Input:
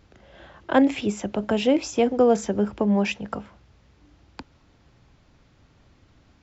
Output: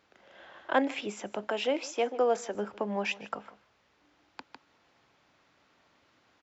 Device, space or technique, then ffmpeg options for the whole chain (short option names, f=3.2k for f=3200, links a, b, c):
ducked delay: -filter_complex "[0:a]asplit=3[a][b][c];[b]adelay=153,volume=-2.5dB[d];[c]apad=whole_len=290032[e];[d][e]sidechaincompress=threshold=-36dB:ratio=8:attack=34:release=1260[f];[a][f]amix=inputs=2:normalize=0,highpass=f=980:p=1,lowshelf=f=130:g=-5.5,highshelf=f=3.4k:g=-8.5,asettb=1/sr,asplit=3[g][h][i];[g]atrim=end=1.474[j];[h]atrim=start=1.47:end=2.55,asetpts=PTS-STARTPTS,afade=t=in:d=0.004:c=qsin,afade=t=out:st=1.076:d=0.004:c=qsin,highpass=270[k];[i]atrim=start=2.546[l];[j][k]acrossfade=d=0.004:c1=hsin:c2=qsin[m];[m][l]acrossfade=d=0.004:c1=qsin:c2=hsin"